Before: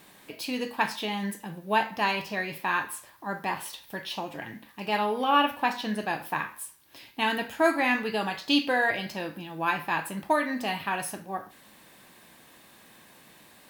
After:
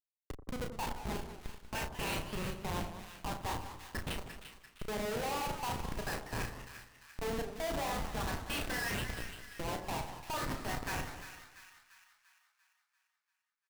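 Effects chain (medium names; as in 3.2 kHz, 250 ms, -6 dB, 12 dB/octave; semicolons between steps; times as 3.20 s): LFO band-pass saw up 0.43 Hz 330–4500 Hz; Schmitt trigger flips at -36.5 dBFS; doubling 34 ms -7 dB; two-band feedback delay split 1.2 kHz, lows 85 ms, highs 344 ms, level -10 dB; modulated delay 194 ms, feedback 36%, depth 188 cents, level -12.5 dB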